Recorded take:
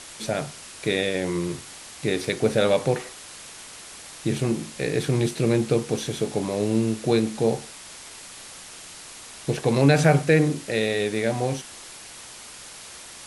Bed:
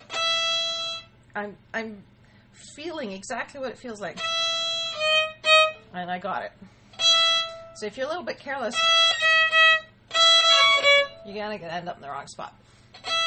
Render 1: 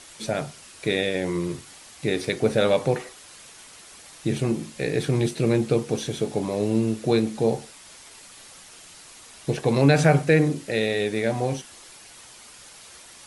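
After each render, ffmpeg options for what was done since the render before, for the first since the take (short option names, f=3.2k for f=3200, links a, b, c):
-af "afftdn=nr=6:nf=-42"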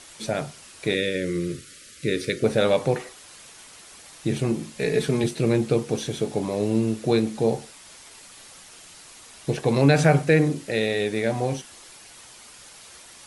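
-filter_complex "[0:a]asettb=1/sr,asplit=3[a][b][c];[a]atrim=end=0.944[d];[b]atrim=start=0.94:end=2.44,asetpts=PTS-STARTPTS,afade=t=in:d=0.004:c=qsin,afade=t=out:st=1.496:d=0.004:c=qsin,asuperstop=centerf=850:order=8:qfactor=1.3[e];[c]atrim=start=2.436[f];[d][e]acrossfade=d=0.004:c1=hsin:c2=qsin[g];[g][f]acrossfade=d=0.004:c1=qsin:c2=hsin,asettb=1/sr,asplit=3[h][i][j];[h]atrim=end=4.794[k];[i]atrim=start=4.79:end=5.24,asetpts=PTS-STARTPTS,afade=t=in:d=0.004:c=qsin,afade=t=out:st=0.446:d=0.004:c=qsin,aecho=1:1:4.7:0.67,atrim=end_sample=19845[l];[j]atrim=start=5.236[m];[k][l]acrossfade=d=0.004:c1=hsin:c2=qsin[n];[n][m]acrossfade=d=0.004:c1=qsin:c2=hsin"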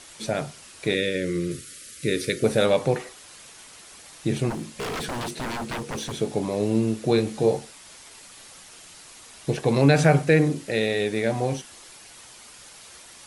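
-filter_complex "[0:a]asettb=1/sr,asplit=3[a][b][c];[a]atrim=end=1.514[d];[b]atrim=start=1.51:end=2.66,asetpts=PTS-STARTPTS,afade=t=in:d=0.004:c=qsin,afade=t=out:st=1.146:d=0.004:c=qsin,highshelf=f=10k:g=12[e];[c]atrim=start=2.656[f];[d][e]acrossfade=d=0.004:c1=hsin:c2=qsin[g];[g][f]acrossfade=d=0.004:c1=qsin:c2=hsin,asplit=3[h][i][j];[h]afade=t=out:st=4.49:d=0.02[k];[i]aeval=exprs='0.0562*(abs(mod(val(0)/0.0562+3,4)-2)-1)':c=same,afade=t=in:st=4.49:d=0.02,afade=t=out:st=6.17:d=0.02[l];[j]afade=t=in:st=6.17:d=0.02[m];[k][l][m]amix=inputs=3:normalize=0,asettb=1/sr,asplit=3[n][o][p];[n]atrim=end=7.164[q];[o]atrim=start=7.16:end=7.59,asetpts=PTS-STARTPTS,afade=t=in:d=0.004:c=qsin,afade=t=out:st=0.426:d=0.004:c=qsin,asplit=2[r][s];[s]adelay=20,volume=-6dB[t];[r][t]amix=inputs=2:normalize=0,atrim=end_sample=18963[u];[p]atrim=start=7.586[v];[q][u]acrossfade=d=0.004:c1=hsin:c2=qsin[w];[w][v]acrossfade=d=0.004:c1=qsin:c2=hsin"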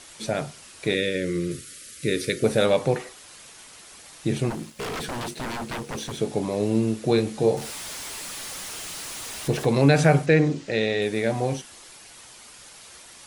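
-filter_complex "[0:a]asettb=1/sr,asplit=3[a][b][c];[a]atrim=end=4.454[d];[b]atrim=start=4.45:end=6.18,asetpts=PTS-STARTPTS,afade=t=in:d=0.004:c=qsin,afade=t=out:st=1.726:d=0.004:c=qsin,aeval=exprs='sgn(val(0))*max(abs(val(0))-0.00355,0)':c=same[e];[c]atrim=start=6.176[f];[d][e]acrossfade=d=0.004:c1=hsin:c2=qsin[g];[g][f]acrossfade=d=0.004:c1=qsin:c2=hsin,asettb=1/sr,asplit=3[h][i][j];[h]atrim=end=7.574[k];[i]atrim=start=7.57:end=9.66,asetpts=PTS-STARTPTS,afade=t=in:d=0.004:c=qsin,afade=t=out:st=2.086:d=0.004:c=qsin,aeval=exprs='val(0)+0.5*0.0251*sgn(val(0))':c=same[l];[j]atrim=start=9.656[m];[k][l]acrossfade=d=0.004:c1=hsin:c2=qsin[n];[n][m]acrossfade=d=0.004:c1=qsin:c2=hsin,asettb=1/sr,asplit=3[o][p][q];[o]atrim=end=10.264[r];[p]atrim=start=10.26:end=11.02,asetpts=PTS-STARTPTS,afade=t=in:d=0.004:c=qsin,afade=t=out:st=0.756:d=0.004:c=qsin,lowpass=f=7k:w=0.5412,lowpass=f=7k:w=1.3066[s];[q]atrim=start=11.016[t];[r][s]acrossfade=d=0.004:c1=hsin:c2=qsin[u];[u][t]acrossfade=d=0.004:c1=qsin:c2=hsin"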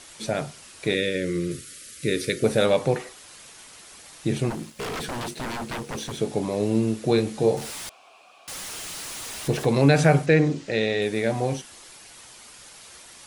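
-filter_complex "[0:a]asettb=1/sr,asplit=3[a][b][c];[a]atrim=end=7.894[d];[b]atrim=start=7.89:end=8.48,asetpts=PTS-STARTPTS,afade=t=in:d=0.004:c=qsin,afade=t=out:st=0.586:d=0.004:c=qsin,asplit=3[e][f][g];[e]bandpass=f=730:t=q:w=8,volume=0dB[h];[f]bandpass=f=1.09k:t=q:w=8,volume=-6dB[i];[g]bandpass=f=2.44k:t=q:w=8,volume=-9dB[j];[h][i][j]amix=inputs=3:normalize=0[k];[c]atrim=start=8.476[l];[d][k]acrossfade=d=0.004:c1=hsin:c2=qsin[m];[m][l]acrossfade=d=0.004:c1=qsin:c2=hsin"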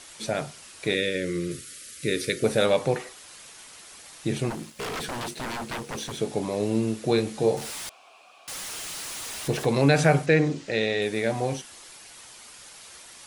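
-af "lowshelf=f=450:g=-3.5"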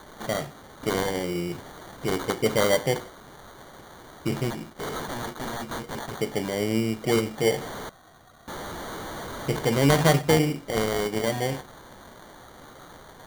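-af "acrusher=samples=17:mix=1:aa=0.000001"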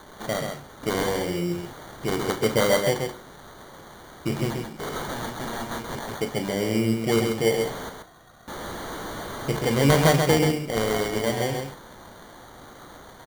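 -filter_complex "[0:a]asplit=2[a][b];[b]adelay=35,volume=-12dB[c];[a][c]amix=inputs=2:normalize=0,aecho=1:1:132:0.562"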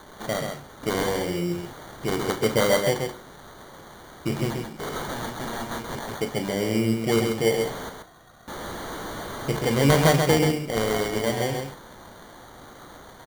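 -af anull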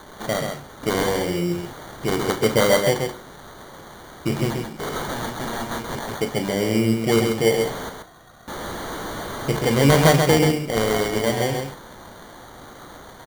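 -af "volume=3.5dB,alimiter=limit=-3dB:level=0:latency=1"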